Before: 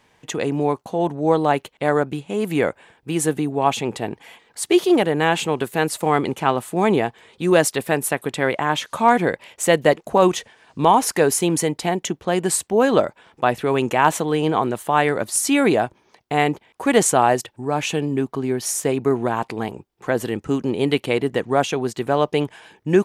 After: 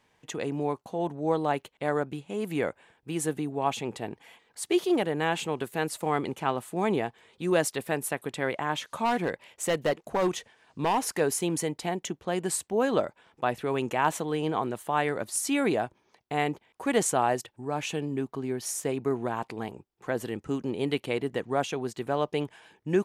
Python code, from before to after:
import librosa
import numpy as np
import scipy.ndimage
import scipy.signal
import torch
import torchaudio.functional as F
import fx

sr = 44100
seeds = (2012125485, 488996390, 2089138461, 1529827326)

y = fx.clip_hard(x, sr, threshold_db=-11.5, at=(9.04, 11.19), fade=0.02)
y = F.gain(torch.from_numpy(y), -9.0).numpy()